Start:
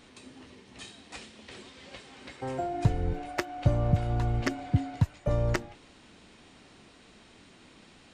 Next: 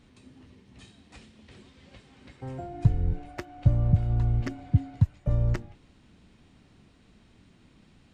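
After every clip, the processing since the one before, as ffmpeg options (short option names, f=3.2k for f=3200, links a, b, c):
-af "bass=f=250:g=13,treble=f=4k:g=-2,volume=-8.5dB"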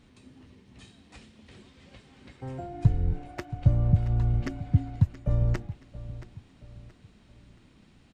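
-af "aecho=1:1:675|1350|2025:0.168|0.0638|0.0242"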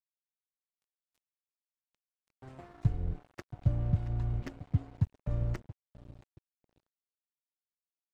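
-af "aeval=exprs='sgn(val(0))*max(abs(val(0))-0.0106,0)':c=same,volume=-6.5dB"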